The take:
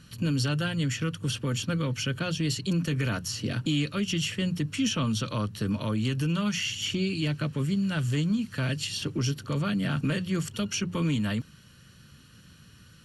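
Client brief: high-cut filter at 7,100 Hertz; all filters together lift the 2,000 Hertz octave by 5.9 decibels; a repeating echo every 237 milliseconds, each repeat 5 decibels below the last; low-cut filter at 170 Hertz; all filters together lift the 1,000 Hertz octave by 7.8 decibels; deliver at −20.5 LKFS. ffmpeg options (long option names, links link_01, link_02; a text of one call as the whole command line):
ffmpeg -i in.wav -af "highpass=170,lowpass=7100,equalizer=frequency=1000:width_type=o:gain=8,equalizer=frequency=2000:width_type=o:gain=5.5,aecho=1:1:237|474|711|948|1185|1422|1659:0.562|0.315|0.176|0.0988|0.0553|0.031|0.0173,volume=6.5dB" out.wav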